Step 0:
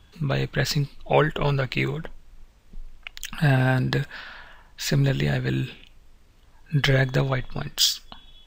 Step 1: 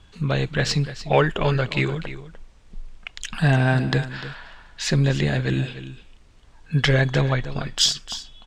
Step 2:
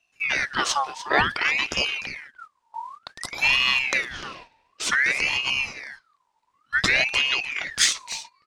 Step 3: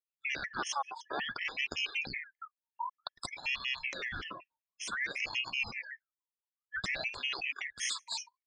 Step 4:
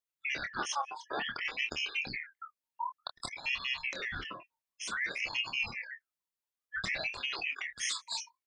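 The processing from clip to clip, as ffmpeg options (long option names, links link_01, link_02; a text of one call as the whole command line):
ffmpeg -i in.wav -filter_complex "[0:a]lowpass=frequency=10000:width=0.5412,lowpass=frequency=10000:width=1.3066,asplit=2[link_01][link_02];[link_02]asoftclip=type=tanh:threshold=-18dB,volume=-10dB[link_03];[link_01][link_03]amix=inputs=2:normalize=0,aecho=1:1:298:0.211" out.wav
ffmpeg -i in.wav -af "agate=range=-17dB:threshold=-38dB:ratio=16:detection=peak,highshelf=frequency=5600:gain=6,aeval=exprs='val(0)*sin(2*PI*1800*n/s+1800*0.5/0.55*sin(2*PI*0.55*n/s))':channel_layout=same" out.wav
ffmpeg -i in.wav -af "afftdn=noise_reduction=35:noise_floor=-39,areverse,acompressor=threshold=-29dB:ratio=16,areverse,afftfilt=real='re*gt(sin(2*PI*5.3*pts/sr)*(1-2*mod(floor(b*sr/1024/1700),2)),0)':imag='im*gt(sin(2*PI*5.3*pts/sr)*(1-2*mod(floor(b*sr/1024/1700),2)),0)':win_size=1024:overlap=0.75" out.wav
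ffmpeg -i in.wav -filter_complex "[0:a]asplit=2[link_01][link_02];[link_02]adelay=26,volume=-7.5dB[link_03];[link_01][link_03]amix=inputs=2:normalize=0" out.wav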